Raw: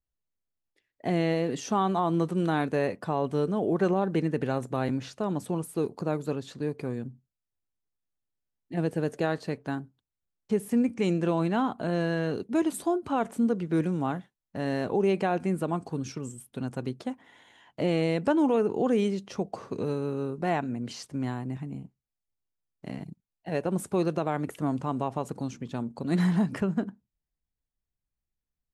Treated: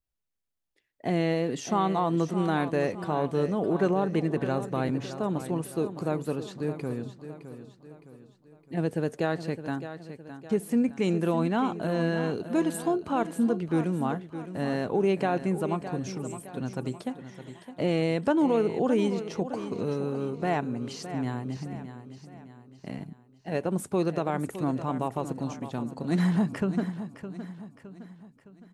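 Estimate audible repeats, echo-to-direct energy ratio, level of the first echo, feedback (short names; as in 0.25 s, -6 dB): 4, -10.5 dB, -11.5 dB, 45%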